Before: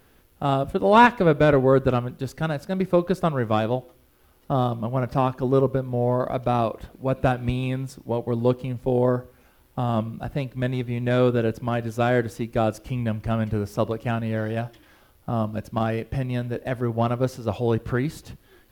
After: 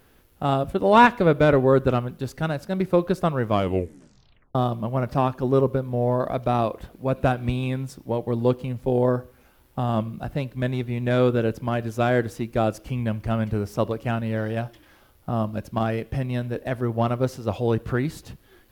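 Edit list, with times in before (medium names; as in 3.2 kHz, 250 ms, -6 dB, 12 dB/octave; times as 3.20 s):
3.50 s: tape stop 1.05 s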